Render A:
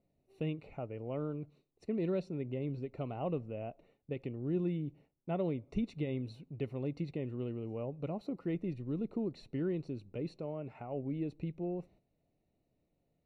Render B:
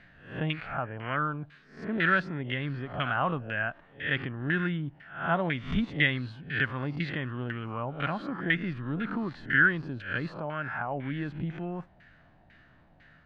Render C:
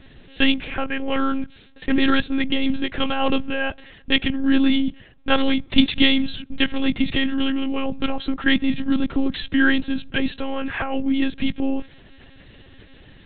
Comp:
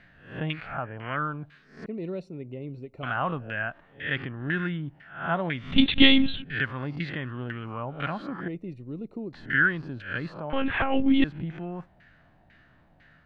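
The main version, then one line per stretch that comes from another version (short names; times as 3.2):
B
1.86–3.03 from A
5.77–6.43 from C, crossfade 0.24 s
8.48–9.33 from A
10.53–11.24 from C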